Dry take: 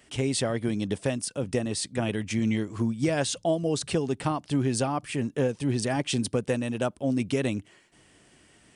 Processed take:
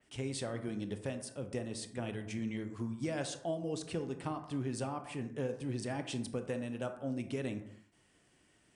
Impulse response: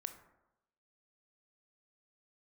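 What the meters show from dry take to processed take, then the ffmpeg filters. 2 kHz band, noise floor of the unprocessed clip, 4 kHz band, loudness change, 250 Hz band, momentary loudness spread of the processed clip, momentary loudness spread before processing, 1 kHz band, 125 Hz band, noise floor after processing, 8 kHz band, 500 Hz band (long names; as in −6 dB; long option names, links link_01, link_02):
−11.0 dB, −60 dBFS, −12.5 dB, −11.0 dB, −11.0 dB, 4 LU, 3 LU, −10.5 dB, −11.0 dB, −70 dBFS, −13.0 dB, −10.5 dB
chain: -filter_complex "[1:a]atrim=start_sample=2205,afade=type=out:start_time=0.37:duration=0.01,atrim=end_sample=16758[link_01];[0:a][link_01]afir=irnorm=-1:irlink=0,adynamicequalizer=threshold=0.00398:dfrequency=3200:dqfactor=0.7:tfrequency=3200:tqfactor=0.7:attack=5:release=100:ratio=0.375:range=1.5:mode=cutabove:tftype=highshelf,volume=-7.5dB"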